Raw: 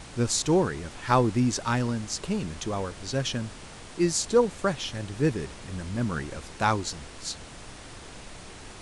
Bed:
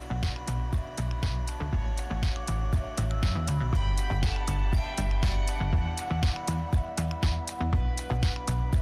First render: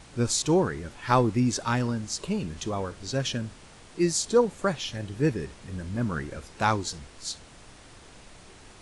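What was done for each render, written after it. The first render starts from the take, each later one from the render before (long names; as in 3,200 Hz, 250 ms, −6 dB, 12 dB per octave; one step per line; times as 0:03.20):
noise reduction from a noise print 6 dB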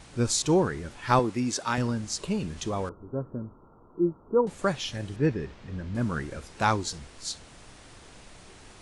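0:01.19–0:01.78: high-pass filter 300 Hz 6 dB per octave
0:02.89–0:04.47: Chebyshev low-pass with heavy ripple 1,400 Hz, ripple 6 dB
0:05.16–0:05.95: high-frequency loss of the air 140 metres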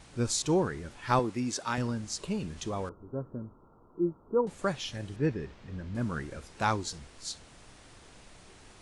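level −4 dB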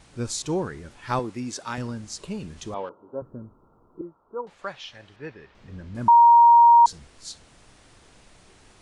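0:02.74–0:03.22: loudspeaker in its box 250–3,900 Hz, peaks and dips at 550 Hz +7 dB, 910 Hz +8 dB, 3,000 Hz +8 dB
0:04.01–0:05.55: three-way crossover with the lows and the highs turned down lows −14 dB, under 570 Hz, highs −19 dB, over 5,000 Hz
0:06.08–0:06.86: beep over 940 Hz −9.5 dBFS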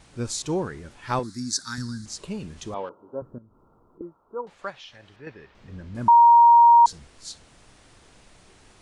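0:01.23–0:02.06: drawn EQ curve 260 Hz 0 dB, 570 Hz −24 dB, 920 Hz −13 dB, 1,600 Hz +3 dB, 2,800 Hz −20 dB, 4,100 Hz +12 dB, 6,900 Hz +8 dB
0:03.38–0:04.01: downward compressor 3 to 1, threshold −54 dBFS
0:04.70–0:05.27: downward compressor 1.5 to 1, threshold −48 dBFS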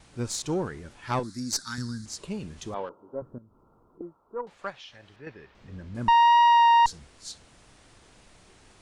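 tube saturation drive 15 dB, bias 0.45
pitch vibrato 1.6 Hz 12 cents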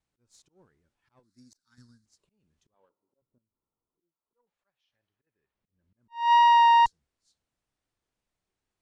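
volume swells 248 ms
expander for the loud parts 2.5 to 1, over −38 dBFS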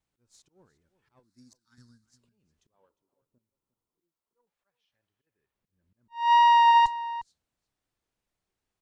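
slap from a distant wall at 61 metres, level −15 dB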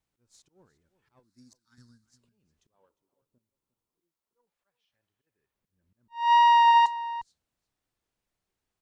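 0:06.24–0:06.97: high-pass filter 380 Hz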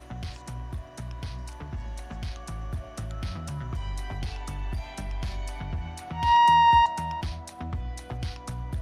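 mix in bed −7 dB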